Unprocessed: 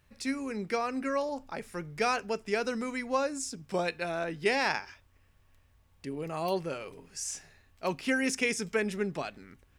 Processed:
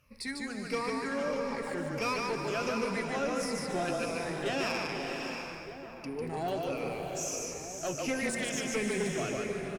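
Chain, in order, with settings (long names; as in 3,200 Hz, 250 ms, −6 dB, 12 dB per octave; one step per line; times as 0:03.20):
rippled gain that drifts along the octave scale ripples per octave 0.9, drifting −1.5 Hz, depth 14 dB
on a send: echo with shifted repeats 148 ms, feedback 30%, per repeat −30 Hz, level −3.5 dB
on the sum: tube saturation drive 21 dB, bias 0.3
in parallel at −1 dB: brickwall limiter −31 dBFS, peak gain reduction 11.5 dB
on the sum: slap from a distant wall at 210 metres, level −11 dB
slow-attack reverb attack 630 ms, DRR 4 dB
level −6.5 dB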